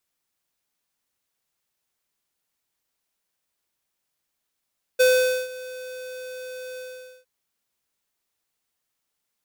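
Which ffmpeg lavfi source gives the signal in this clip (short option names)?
-f lavfi -i "aevalsrc='0.168*(2*lt(mod(508*t,1),0.5)-1)':d=2.259:s=44100,afade=t=in:d=0.016,afade=t=out:st=0.016:d=0.471:silence=0.0944,afade=t=out:st=1.79:d=0.469"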